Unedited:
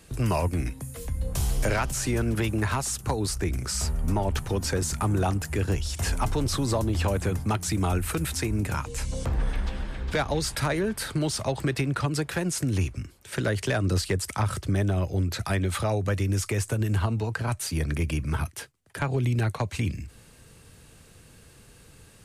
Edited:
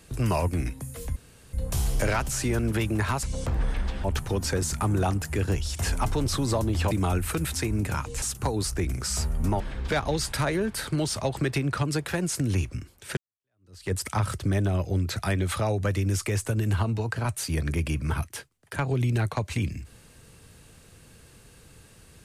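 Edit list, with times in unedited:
1.16 s: insert room tone 0.37 s
2.86–4.24 s: swap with 9.02–9.83 s
7.11–7.71 s: delete
13.40–14.15 s: fade in exponential

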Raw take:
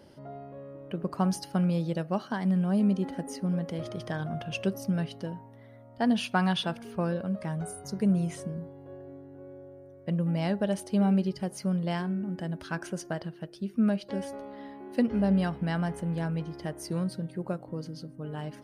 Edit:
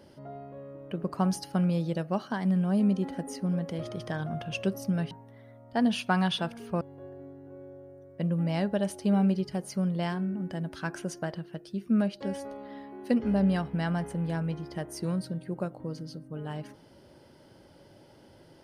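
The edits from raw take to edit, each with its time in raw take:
5.11–5.36 s: delete
7.06–8.69 s: delete

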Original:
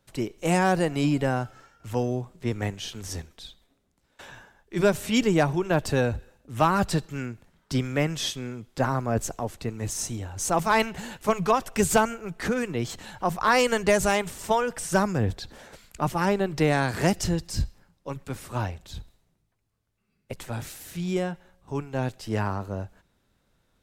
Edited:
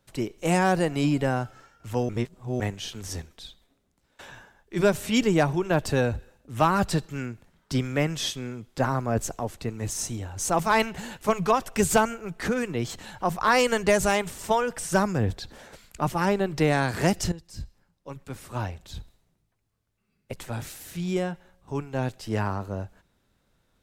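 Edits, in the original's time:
2.09–2.60 s: reverse
17.32–18.97 s: fade in, from -16 dB

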